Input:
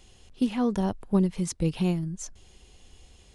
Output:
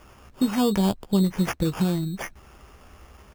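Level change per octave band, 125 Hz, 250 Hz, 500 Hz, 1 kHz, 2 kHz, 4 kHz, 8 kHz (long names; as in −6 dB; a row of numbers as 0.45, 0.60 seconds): +2.5, +3.0, +3.0, +5.0, +9.0, +8.0, +0.5 decibels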